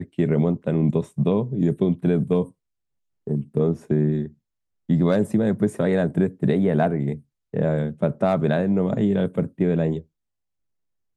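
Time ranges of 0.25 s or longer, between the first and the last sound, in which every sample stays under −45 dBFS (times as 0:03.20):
0:02.51–0:03.27
0:04.33–0:04.89
0:07.21–0:07.53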